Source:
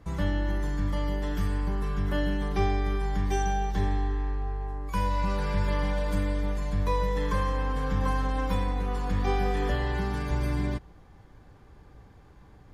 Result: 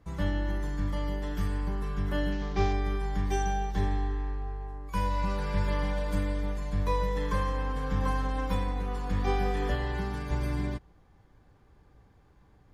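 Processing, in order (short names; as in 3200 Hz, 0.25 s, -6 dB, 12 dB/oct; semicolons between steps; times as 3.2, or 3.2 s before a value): 2.32–2.73 CVSD 32 kbps; upward expander 1.5:1, over -36 dBFS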